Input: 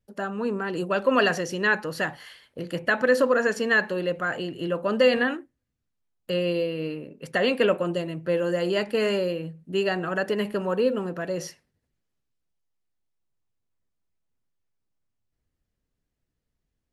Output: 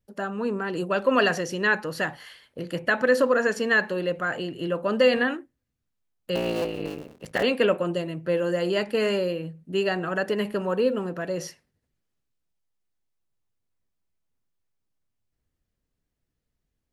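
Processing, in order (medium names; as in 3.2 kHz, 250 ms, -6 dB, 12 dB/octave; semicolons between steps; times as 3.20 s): 6.35–7.43 s: cycle switcher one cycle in 3, muted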